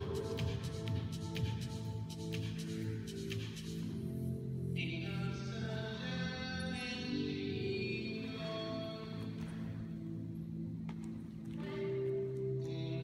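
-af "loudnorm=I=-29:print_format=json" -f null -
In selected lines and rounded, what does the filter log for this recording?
"input_i" : "-40.9",
"input_tp" : "-25.9",
"input_lra" : "3.1",
"input_thresh" : "-50.9",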